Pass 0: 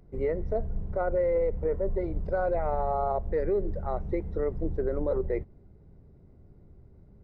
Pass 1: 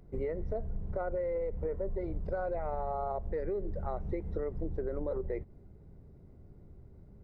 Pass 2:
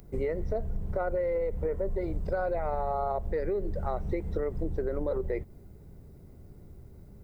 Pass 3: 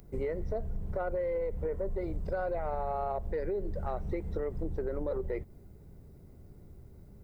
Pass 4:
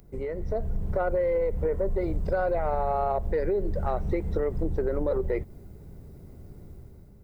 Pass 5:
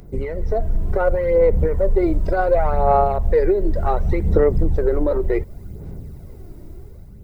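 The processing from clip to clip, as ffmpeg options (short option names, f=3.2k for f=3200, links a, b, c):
-af "acompressor=threshold=-31dB:ratio=6"
-af "crystalizer=i=3.5:c=0,volume=4dB"
-af "asoftclip=type=tanh:threshold=-19dB,volume=-2.5dB"
-af "dynaudnorm=f=140:g=7:m=7dB"
-af "aphaser=in_gain=1:out_gain=1:delay=3.2:decay=0.49:speed=0.68:type=sinusoidal,volume=6.5dB"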